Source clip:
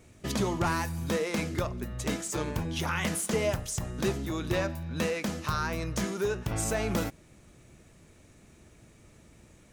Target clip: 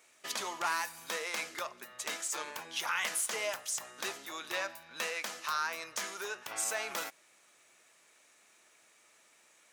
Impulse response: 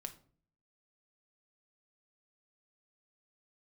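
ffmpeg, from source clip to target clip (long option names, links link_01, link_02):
-af "highpass=940"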